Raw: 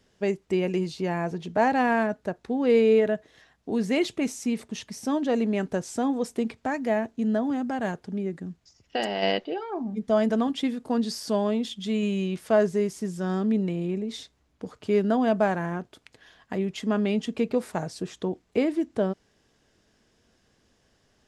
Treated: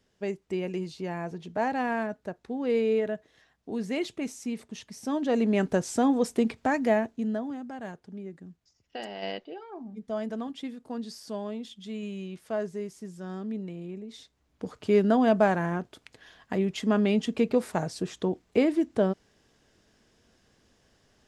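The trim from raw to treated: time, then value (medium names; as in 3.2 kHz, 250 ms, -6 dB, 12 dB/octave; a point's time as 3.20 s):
4.90 s -6 dB
5.62 s +2.5 dB
6.86 s +2.5 dB
7.61 s -10 dB
14.13 s -10 dB
14.65 s +1 dB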